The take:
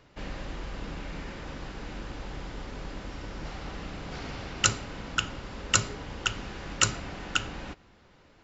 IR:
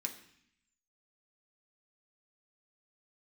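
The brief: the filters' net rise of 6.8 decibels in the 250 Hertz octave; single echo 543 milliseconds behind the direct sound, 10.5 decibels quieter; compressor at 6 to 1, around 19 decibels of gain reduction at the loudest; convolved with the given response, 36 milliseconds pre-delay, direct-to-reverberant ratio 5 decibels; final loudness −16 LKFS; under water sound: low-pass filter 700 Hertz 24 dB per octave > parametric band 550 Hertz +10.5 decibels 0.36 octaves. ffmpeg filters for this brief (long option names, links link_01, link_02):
-filter_complex "[0:a]equalizer=frequency=250:width_type=o:gain=8.5,acompressor=threshold=-39dB:ratio=6,aecho=1:1:543:0.299,asplit=2[link_01][link_02];[1:a]atrim=start_sample=2205,adelay=36[link_03];[link_02][link_03]afir=irnorm=-1:irlink=0,volume=-4dB[link_04];[link_01][link_04]amix=inputs=2:normalize=0,lowpass=frequency=700:width=0.5412,lowpass=frequency=700:width=1.3066,equalizer=frequency=550:width_type=o:width=0.36:gain=10.5,volume=26dB"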